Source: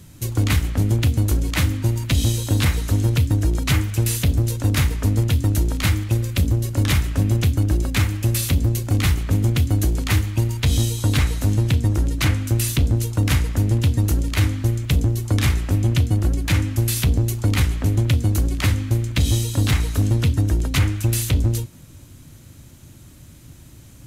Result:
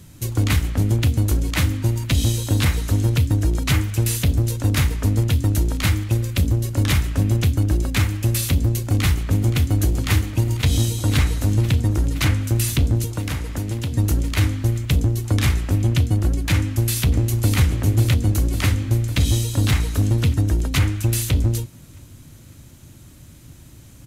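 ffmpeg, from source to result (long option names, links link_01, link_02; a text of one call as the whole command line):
ffmpeg -i in.wav -filter_complex "[0:a]asplit=2[link_01][link_02];[link_02]afade=type=in:start_time=8.89:duration=0.01,afade=type=out:start_time=9.81:duration=0.01,aecho=0:1:520|1040|1560|2080|2600|3120|3640|4160|4680|5200|5720|6240:0.251189|0.21351|0.181484|0.154261|0.131122|0.111454|0.0947357|0.0805253|0.0684465|0.0581795|0.0494526|0.0420347[link_03];[link_01][link_03]amix=inputs=2:normalize=0,asettb=1/sr,asplit=3[link_04][link_05][link_06];[link_04]atrim=end=13.044[link_07];[link_05]atrim=start=13.04:end=13.93,asetpts=PTS-STARTPTS,afade=type=in:duration=0.004:curve=qsin,afade=type=out:start_time=0.886:duration=0.004:curve=qsin,acrossover=split=230|1300[link_08][link_09][link_10];[link_08]acompressor=threshold=-25dB:ratio=4[link_11];[link_09]acompressor=threshold=-31dB:ratio=4[link_12];[link_10]acompressor=threshold=-32dB:ratio=4[link_13];[link_11][link_12][link_13]amix=inputs=3:normalize=0[link_14];[link_06]atrim=start=13.926[link_15];[link_07][link_14]acrossfade=duration=0.004:curve1=hsin:curve2=qsin[link_16];[link_16][link_15]acrossfade=duration=0.004:curve1=qsin:curve2=hsin,asplit=2[link_17][link_18];[link_18]afade=type=in:start_time=16.57:duration=0.01,afade=type=out:start_time=17.58:duration=0.01,aecho=0:1:550|1100|1650|2200|2750|3300|3850|4400|4950:0.446684|0.290344|0.188724|0.12267|0.0797358|0.0518283|0.0336884|0.0218974|0.0142333[link_19];[link_17][link_19]amix=inputs=2:normalize=0" out.wav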